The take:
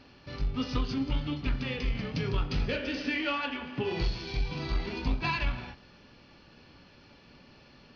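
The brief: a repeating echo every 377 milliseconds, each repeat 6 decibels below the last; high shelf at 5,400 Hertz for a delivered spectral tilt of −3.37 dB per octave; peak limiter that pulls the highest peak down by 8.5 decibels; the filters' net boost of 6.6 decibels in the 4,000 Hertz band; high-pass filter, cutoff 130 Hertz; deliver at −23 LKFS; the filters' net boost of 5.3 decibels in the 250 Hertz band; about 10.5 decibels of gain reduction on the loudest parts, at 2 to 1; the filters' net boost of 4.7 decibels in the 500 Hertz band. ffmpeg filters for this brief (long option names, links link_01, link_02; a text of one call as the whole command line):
ffmpeg -i in.wav -af "highpass=130,equalizer=frequency=250:width_type=o:gain=5.5,equalizer=frequency=500:width_type=o:gain=4,equalizer=frequency=4000:width_type=o:gain=7,highshelf=frequency=5400:gain=4,acompressor=threshold=-42dB:ratio=2,alimiter=level_in=8dB:limit=-24dB:level=0:latency=1,volume=-8dB,aecho=1:1:377|754|1131|1508|1885|2262:0.501|0.251|0.125|0.0626|0.0313|0.0157,volume=17.5dB" out.wav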